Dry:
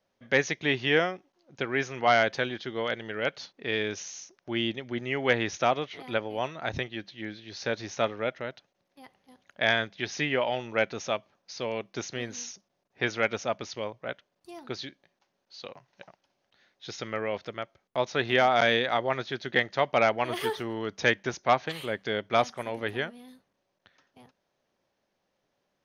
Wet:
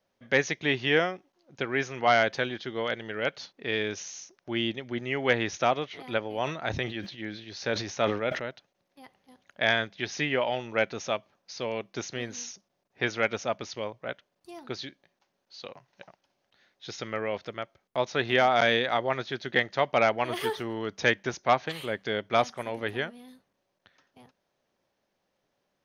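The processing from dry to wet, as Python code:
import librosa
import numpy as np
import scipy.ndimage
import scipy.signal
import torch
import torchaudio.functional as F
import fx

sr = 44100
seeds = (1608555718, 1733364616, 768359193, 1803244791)

y = fx.sustainer(x, sr, db_per_s=76.0, at=(6.29, 8.42))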